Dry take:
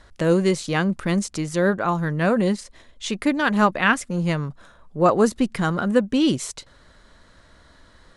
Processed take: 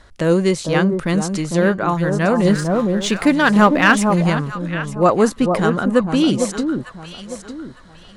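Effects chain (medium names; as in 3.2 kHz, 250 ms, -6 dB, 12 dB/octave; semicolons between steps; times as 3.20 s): echo whose repeats swap between lows and highs 452 ms, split 1.1 kHz, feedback 53%, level -5 dB; 2.45–4.30 s: waveshaping leveller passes 1; trim +3 dB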